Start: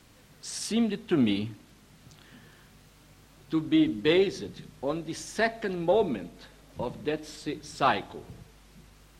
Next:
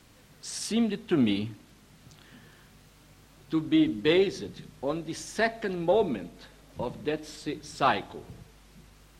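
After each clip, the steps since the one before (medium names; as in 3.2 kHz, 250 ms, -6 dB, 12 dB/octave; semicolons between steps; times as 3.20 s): no audible change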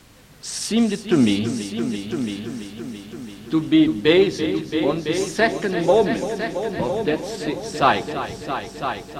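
multi-head delay 335 ms, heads all three, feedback 50%, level -12 dB; trim +7.5 dB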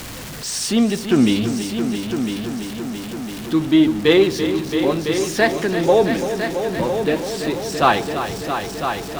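jump at every zero crossing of -29 dBFS; trim +1 dB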